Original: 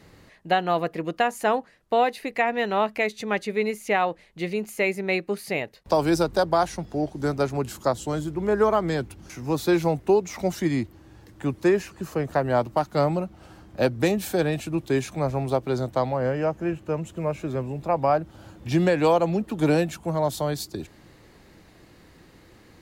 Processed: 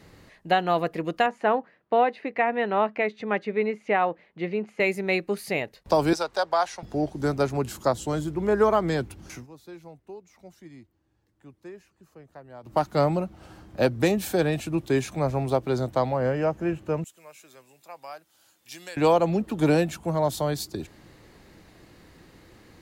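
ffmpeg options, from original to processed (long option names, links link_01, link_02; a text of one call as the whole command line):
ffmpeg -i in.wav -filter_complex "[0:a]asettb=1/sr,asplit=3[link_01][link_02][link_03];[link_01]atrim=end=1.264[link_04];[link_02]atrim=start=1.26:end=4.8,asetpts=PTS-STARTPTS,afade=type=in:duration=0.004:curve=qsin,afade=type=out:start_time=3.536:duration=0.004:curve=qsin,highpass=150,lowpass=2300[link_05];[link_03]atrim=start=4.796[link_06];[link_04][link_05]acrossfade=duration=0.004:curve1=hsin:curve2=qsin[link_07];[link_07][link_06]acrossfade=duration=0.004:curve1=qsin:curve2=hsin,asettb=1/sr,asplit=3[link_08][link_09][link_10];[link_08]atrim=end=6.134[link_11];[link_09]atrim=start=6.13:end=6.83,asetpts=PTS-STARTPTS,afade=type=in:duration=0.004:curve=qsin,afade=type=out:start_time=0.696:duration=0.004:curve=qsin,acrossover=split=530 7700:gain=0.0891 1 0.251[link_12][link_13][link_14];[link_12][link_13][link_14]amix=inputs=3:normalize=0[link_15];[link_10]atrim=start=6.826[link_16];[link_11][link_15]acrossfade=duration=0.004:curve1=hsin:curve2=qsin[link_17];[link_17][link_16]acrossfade=duration=0.004:curve1=qsin:curve2=hsin,asettb=1/sr,asplit=3[link_18][link_19][link_20];[link_18]atrim=end=17.044[link_21];[link_19]atrim=start=17.04:end=18.97,asetpts=PTS-STARTPTS,afade=type=in:duration=0.004:curve=qsin,afade=type=out:start_time=1.926:duration=0.004:curve=qsin,aderivative[link_22];[link_20]atrim=start=18.966[link_23];[link_21][link_22]acrossfade=duration=0.004:curve1=hsin:curve2=qsin[link_24];[link_24][link_23]acrossfade=duration=0.004:curve1=qsin:curve2=hsin,asplit=3[link_25][link_26][link_27];[link_25]atrim=end=9.47,asetpts=PTS-STARTPTS,afade=type=out:start_time=9.35:duration=0.12:silence=0.0749894[link_28];[link_26]atrim=start=9.47:end=12.63,asetpts=PTS-STARTPTS,volume=-22.5dB[link_29];[link_27]atrim=start=12.63,asetpts=PTS-STARTPTS,afade=type=in:duration=0.12:silence=0.0749894[link_30];[link_28][link_29][link_30]concat=n=3:v=0:a=1" out.wav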